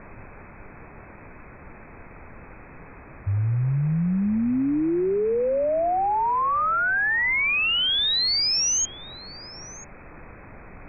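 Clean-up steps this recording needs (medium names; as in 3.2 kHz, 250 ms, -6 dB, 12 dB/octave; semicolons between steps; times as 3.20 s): noise print and reduce 28 dB; inverse comb 990 ms -19.5 dB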